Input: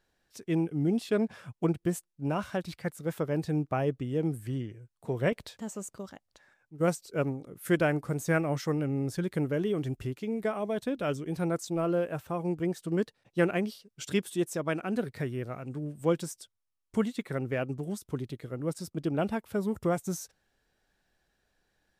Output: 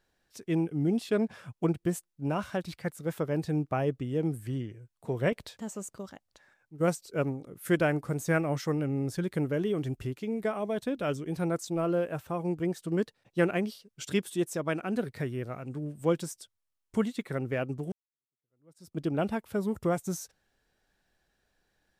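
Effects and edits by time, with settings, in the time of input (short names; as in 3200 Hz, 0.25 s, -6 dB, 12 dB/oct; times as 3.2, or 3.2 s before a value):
17.92–18.97 fade in exponential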